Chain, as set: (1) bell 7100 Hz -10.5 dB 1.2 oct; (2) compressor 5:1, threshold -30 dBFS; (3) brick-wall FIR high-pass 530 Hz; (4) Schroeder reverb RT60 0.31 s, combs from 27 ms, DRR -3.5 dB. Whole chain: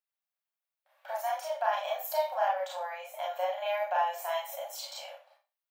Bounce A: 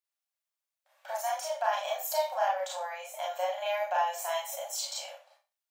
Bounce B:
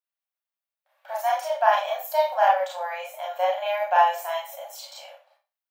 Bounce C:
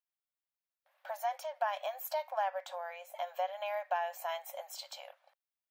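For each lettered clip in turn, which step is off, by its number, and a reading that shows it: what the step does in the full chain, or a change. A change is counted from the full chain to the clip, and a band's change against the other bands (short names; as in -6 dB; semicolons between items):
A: 1, 8 kHz band +9.0 dB; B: 2, crest factor change +2.0 dB; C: 4, loudness change -5.0 LU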